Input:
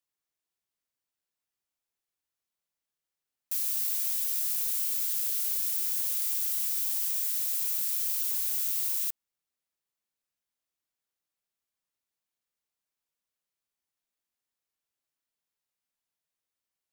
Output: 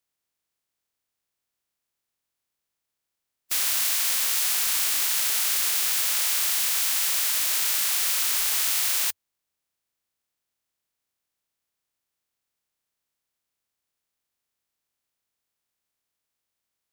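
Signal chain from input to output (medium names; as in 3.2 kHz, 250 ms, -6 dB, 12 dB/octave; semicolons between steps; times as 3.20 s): spectral peaks clipped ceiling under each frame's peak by 27 dB; peaking EQ 86 Hz +4 dB 0.58 oct; trim +6 dB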